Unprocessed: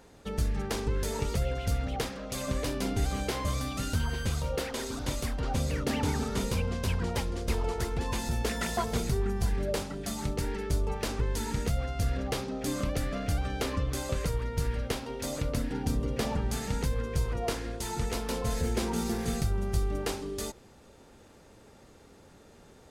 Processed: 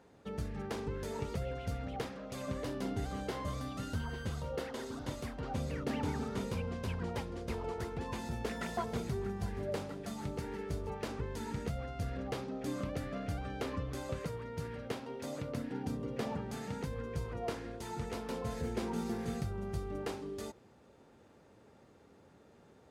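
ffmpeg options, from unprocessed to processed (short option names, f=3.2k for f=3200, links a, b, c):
-filter_complex "[0:a]asettb=1/sr,asplit=3[a][b][c];[a]atrim=end=2.544[d];[b]atrim=start=2.54:end=5.2,asetpts=PTS-STARTPTS,afade=t=in:d=0.004:c=qsin,afade=t=out:st=2.656:d=0.004:c=qsin,bandreject=f=2.4k:w=12[e];[c]atrim=start=5.196[f];[d][e]acrossfade=d=0.004:c1=hsin:c2=qsin[g];[g][f]acrossfade=d=0.004:c1=qsin:c2=hsin,asettb=1/sr,asplit=3[h][i][j];[h]atrim=end=8.864[k];[i]atrim=start=8.86:end=10.9,asetpts=PTS-STARTPTS,afade=t=in:d=0.004:c=qsin,afade=t=out:st=2.036:d=0.004:c=qsin,aecho=1:1:152|304|456|608|760:0.211|0.108|0.055|0.028|0.0143,atrim=end_sample=89964[l];[j]atrim=start=10.896[m];[k][l]acrossfade=d=0.004:c1=hsin:c2=qsin[n];[n][m]acrossfade=d=0.004:c1=qsin:c2=hsin,asettb=1/sr,asplit=3[o][p][q];[o]atrim=end=14.184[r];[p]atrim=start=14.18:end=16.87,asetpts=PTS-STARTPTS,afade=t=in:d=0.004:c=qsin,afade=t=out:st=2.686:d=0.004:c=qsin,highpass=98[s];[q]atrim=start=16.866[t];[r][s]acrossfade=d=0.004:c1=hsin:c2=qsin[u];[u][t]acrossfade=d=0.004:c1=qsin:c2=hsin,highpass=86,highshelf=f=3.4k:g=-10.5,volume=-5dB"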